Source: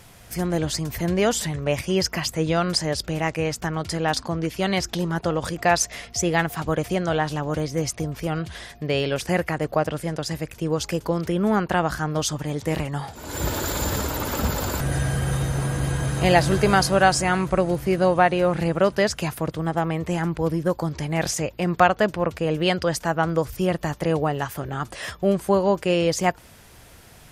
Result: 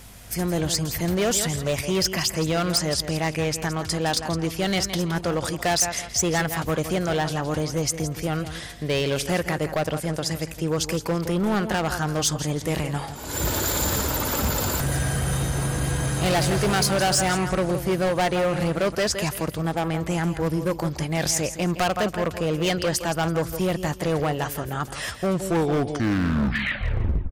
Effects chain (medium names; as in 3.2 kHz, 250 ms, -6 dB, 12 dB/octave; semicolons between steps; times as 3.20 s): tape stop on the ending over 2.08 s; feedback delay 166 ms, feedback 28%, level -12 dB; hum 50 Hz, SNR 25 dB; overload inside the chain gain 18.5 dB; treble shelf 4 kHz +5.5 dB